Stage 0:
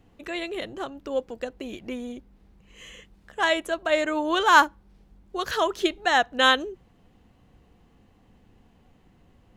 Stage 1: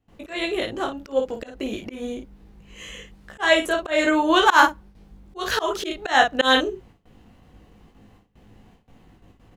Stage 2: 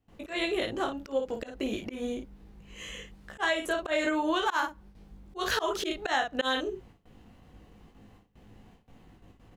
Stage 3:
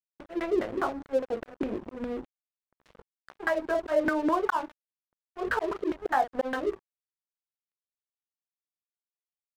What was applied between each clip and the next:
gate with hold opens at -48 dBFS; early reflections 19 ms -4 dB, 54 ms -7.5 dB; slow attack 158 ms; trim +5 dB
compression 16:1, threshold -21 dBFS, peak gain reduction 13 dB; trim -3 dB
LFO low-pass saw down 4.9 Hz 270–1600 Hz; crossover distortion -40.5 dBFS

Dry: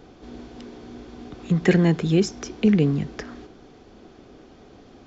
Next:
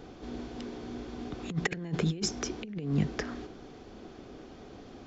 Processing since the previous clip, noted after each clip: compressor with a negative ratio -24 dBFS, ratio -0.5; trim -5.5 dB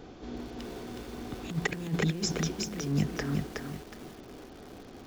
bit-crushed delay 368 ms, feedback 35%, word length 8-bit, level -3 dB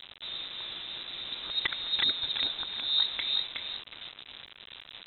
bit crusher 7-bit; frequency inversion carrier 3.9 kHz

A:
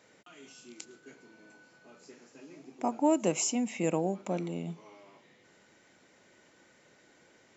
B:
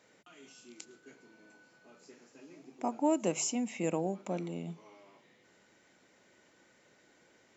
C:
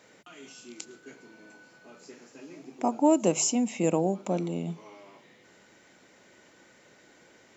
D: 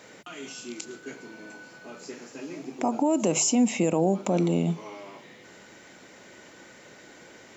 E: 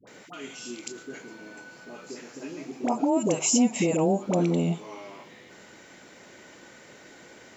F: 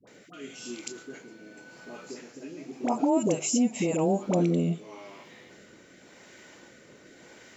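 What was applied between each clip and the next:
hum notches 50/100/150 Hz; trim -3 dB
dynamic bell 1.9 kHz, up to -6 dB, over -57 dBFS, Q 1.4; trim +7.5 dB
peak limiter -22.5 dBFS, peak gain reduction 12 dB; trim +8 dB
phase dispersion highs, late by 73 ms, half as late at 660 Hz
rotary cabinet horn 0.9 Hz

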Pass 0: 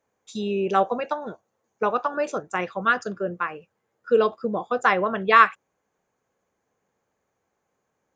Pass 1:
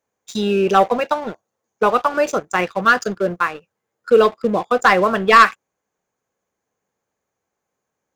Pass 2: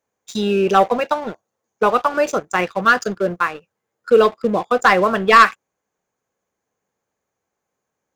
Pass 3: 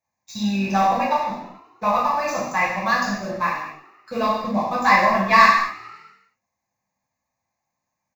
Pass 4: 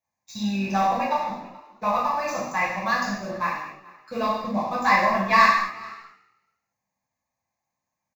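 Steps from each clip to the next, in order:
treble shelf 4 kHz +6.5 dB; waveshaping leveller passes 2
no audible change
static phaser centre 2.1 kHz, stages 8; frequency-shifting echo 106 ms, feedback 64%, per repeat +38 Hz, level -20.5 dB; gated-style reverb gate 290 ms falling, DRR -7 dB; trim -6 dB
delay 430 ms -23 dB; trim -3.5 dB

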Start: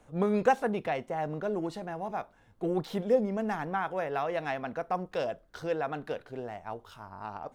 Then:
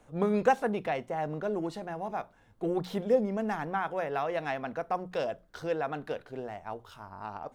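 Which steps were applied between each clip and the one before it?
hum notches 60/120/180 Hz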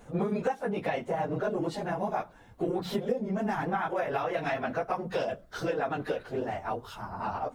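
phase randomisation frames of 50 ms; compression 10:1, threshold -33 dBFS, peak gain reduction 18 dB; trim +7 dB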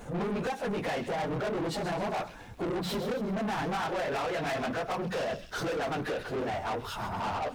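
saturation -29 dBFS, distortion -11 dB; feedback echo behind a high-pass 131 ms, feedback 47%, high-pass 3.3 kHz, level -8 dB; waveshaping leveller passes 2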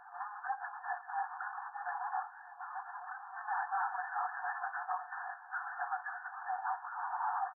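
doubling 23 ms -14 dB; FFT band-pass 700–1800 Hz; shuffle delay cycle 1006 ms, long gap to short 1.5:1, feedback 60%, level -19 dB; trim -1.5 dB

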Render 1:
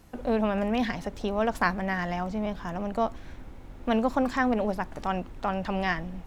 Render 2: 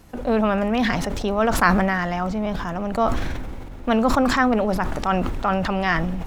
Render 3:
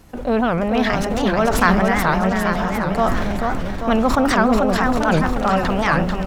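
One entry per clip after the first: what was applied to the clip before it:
dynamic bell 1.3 kHz, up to +7 dB, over -49 dBFS, Q 5.1; decay stretcher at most 27 dB/s; trim +5 dB
on a send: bouncing-ball echo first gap 440 ms, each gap 0.9×, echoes 5; on the sum: warped record 78 rpm, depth 250 cents; trim +1.5 dB

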